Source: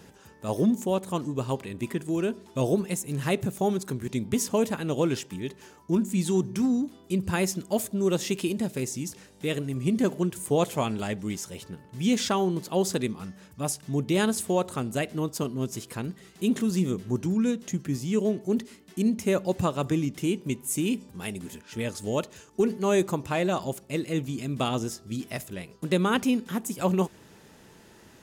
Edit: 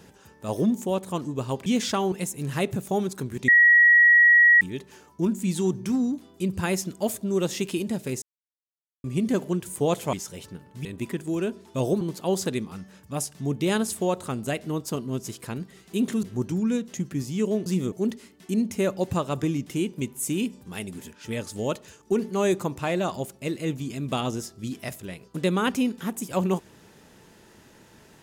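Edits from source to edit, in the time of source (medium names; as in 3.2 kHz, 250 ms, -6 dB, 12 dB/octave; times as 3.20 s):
1.66–2.82 s: swap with 12.03–12.49 s
4.18–5.31 s: bleep 1.91 kHz -12 dBFS
8.92–9.74 s: mute
10.83–11.31 s: delete
16.71–16.97 s: move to 18.40 s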